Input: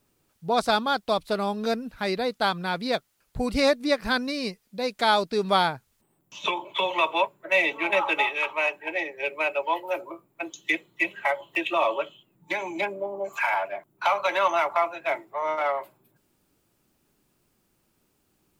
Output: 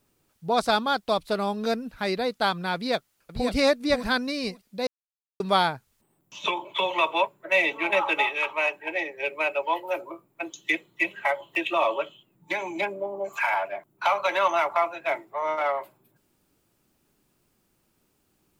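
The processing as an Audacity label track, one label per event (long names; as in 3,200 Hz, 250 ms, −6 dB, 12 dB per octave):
2.750000	3.530000	delay throw 540 ms, feedback 15%, level −7 dB
4.870000	5.400000	silence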